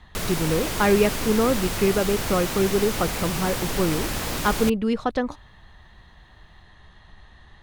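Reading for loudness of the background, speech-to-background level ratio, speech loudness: -27.5 LUFS, 3.5 dB, -24.0 LUFS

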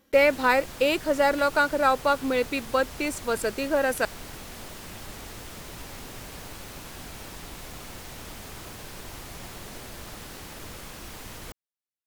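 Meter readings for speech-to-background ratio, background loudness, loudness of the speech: 16.0 dB, -40.5 LUFS, -24.5 LUFS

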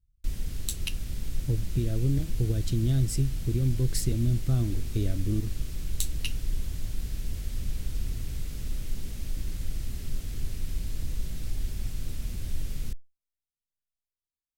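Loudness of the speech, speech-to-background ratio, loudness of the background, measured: -30.0 LUFS, 7.0 dB, -37.0 LUFS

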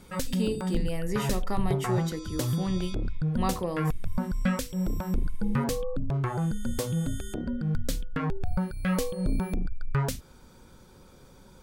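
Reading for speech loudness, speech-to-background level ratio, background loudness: -33.0 LUFS, -2.0 dB, -31.0 LUFS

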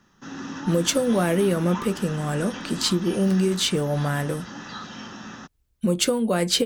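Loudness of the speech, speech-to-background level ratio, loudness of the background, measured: -23.5 LUFS, 13.0 dB, -36.5 LUFS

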